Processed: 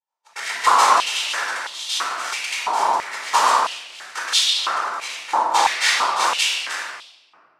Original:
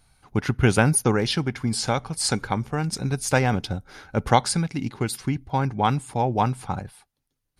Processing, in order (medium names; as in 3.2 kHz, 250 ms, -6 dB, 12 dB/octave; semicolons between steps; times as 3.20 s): tracing distortion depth 0.14 ms; Butterworth band-stop 4.6 kHz, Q 0.96; noise-vocoded speech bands 2; expander -47 dBFS; reverberation RT60 1.5 s, pre-delay 17 ms, DRR -4.5 dB; 4.48–6.24 s: dynamic bell 3.8 kHz, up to +4 dB, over -32 dBFS, Q 1.1; step-sequenced high-pass 3 Hz 910–3400 Hz; trim -4 dB